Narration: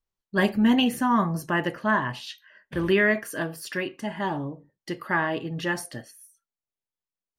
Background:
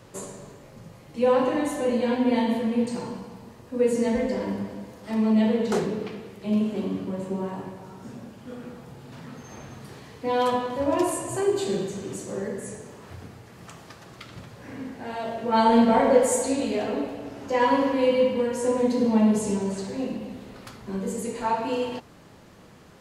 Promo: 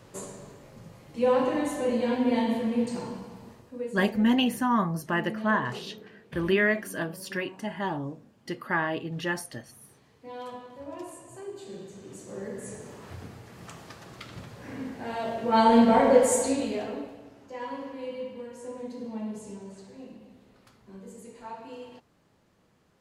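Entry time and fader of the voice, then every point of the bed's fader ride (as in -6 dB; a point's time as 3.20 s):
3.60 s, -2.5 dB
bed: 3.52 s -2.5 dB
3.95 s -16.5 dB
11.61 s -16.5 dB
12.91 s -0.5 dB
16.46 s -0.5 dB
17.50 s -15.5 dB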